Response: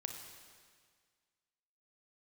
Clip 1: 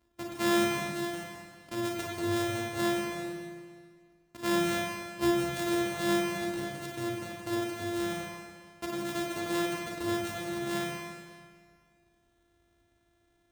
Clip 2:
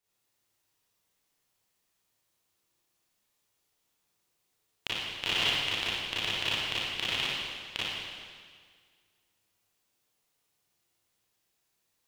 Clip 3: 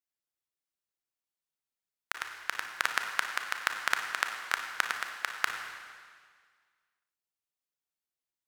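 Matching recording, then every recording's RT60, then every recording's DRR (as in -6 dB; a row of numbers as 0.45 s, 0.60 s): 3; 1.8 s, 1.8 s, 1.8 s; -2.0 dB, -10.5 dB, 4.0 dB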